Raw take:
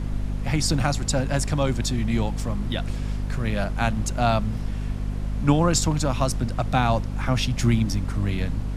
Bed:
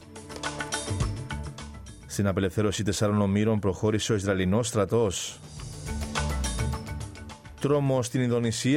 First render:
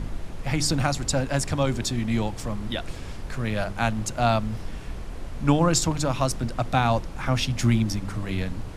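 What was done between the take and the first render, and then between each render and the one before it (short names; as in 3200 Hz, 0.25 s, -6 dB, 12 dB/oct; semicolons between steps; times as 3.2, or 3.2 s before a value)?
de-hum 50 Hz, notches 8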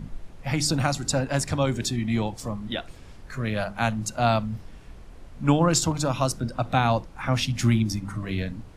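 noise print and reduce 10 dB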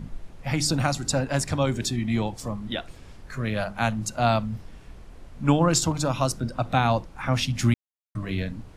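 7.74–8.15 mute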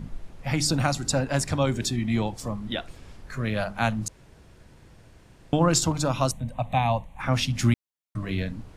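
4.08–5.53 room tone; 6.31–7.2 fixed phaser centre 1400 Hz, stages 6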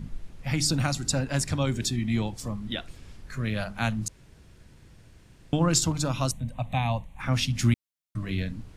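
bell 720 Hz -6.5 dB 2.1 oct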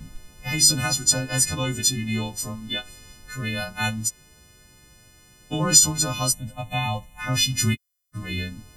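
frequency quantiser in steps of 3 st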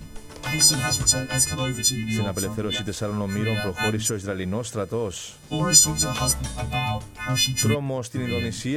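add bed -3 dB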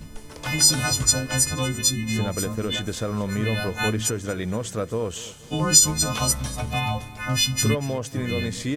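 feedback echo 0.237 s, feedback 41%, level -18 dB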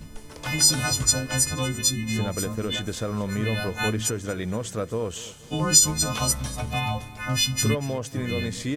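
gain -1.5 dB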